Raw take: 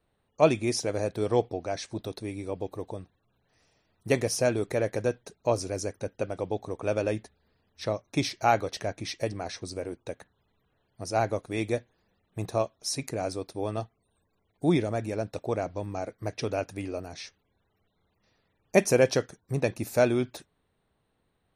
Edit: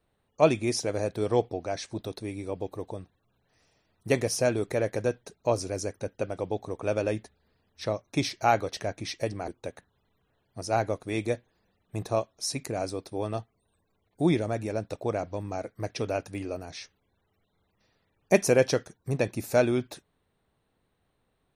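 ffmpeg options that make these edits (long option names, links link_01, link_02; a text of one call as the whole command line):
ffmpeg -i in.wav -filter_complex "[0:a]asplit=2[link_01][link_02];[link_01]atrim=end=9.482[link_03];[link_02]atrim=start=9.908[link_04];[link_03][link_04]acrossfade=duration=0.004:curve1=hsin:curve2=hsin" out.wav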